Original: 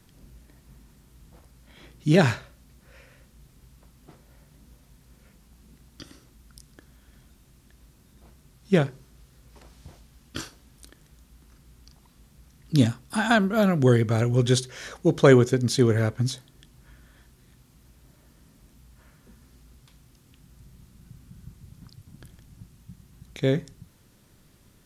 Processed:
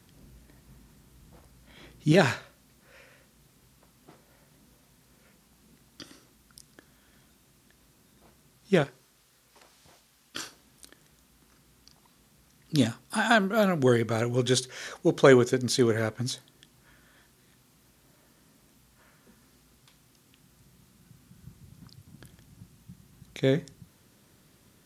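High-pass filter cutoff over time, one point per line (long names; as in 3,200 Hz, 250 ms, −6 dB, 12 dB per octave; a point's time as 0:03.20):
high-pass filter 6 dB per octave
79 Hz
from 0:02.12 260 Hz
from 0:08.84 750 Hz
from 0:10.43 290 Hz
from 0:21.42 140 Hz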